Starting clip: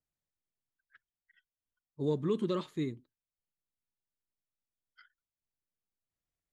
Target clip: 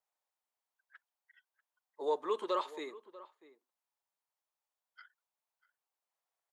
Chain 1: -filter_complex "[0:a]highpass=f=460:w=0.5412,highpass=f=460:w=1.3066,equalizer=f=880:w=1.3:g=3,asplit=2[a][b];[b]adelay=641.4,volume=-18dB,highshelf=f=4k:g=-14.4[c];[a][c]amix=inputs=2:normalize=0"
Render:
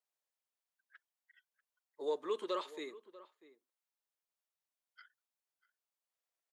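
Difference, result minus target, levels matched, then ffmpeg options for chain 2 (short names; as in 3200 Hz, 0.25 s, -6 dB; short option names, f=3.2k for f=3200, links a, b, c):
1000 Hz band -3.5 dB
-filter_complex "[0:a]highpass=f=460:w=0.5412,highpass=f=460:w=1.3066,equalizer=f=880:w=1.3:g=12,asplit=2[a][b];[b]adelay=641.4,volume=-18dB,highshelf=f=4k:g=-14.4[c];[a][c]amix=inputs=2:normalize=0"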